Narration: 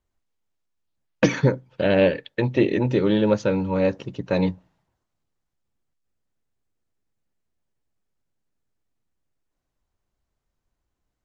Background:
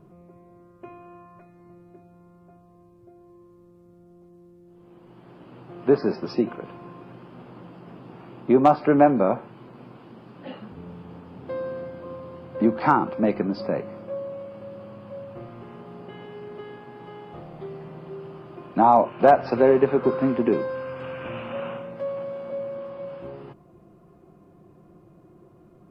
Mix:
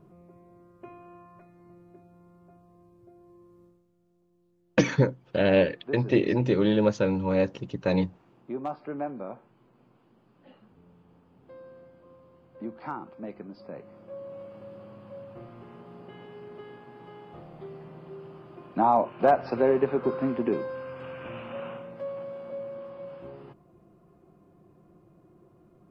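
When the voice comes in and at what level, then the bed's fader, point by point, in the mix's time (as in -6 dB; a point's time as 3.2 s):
3.55 s, -3.0 dB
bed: 3.65 s -3.5 dB
3.88 s -17 dB
13.59 s -17 dB
14.41 s -5.5 dB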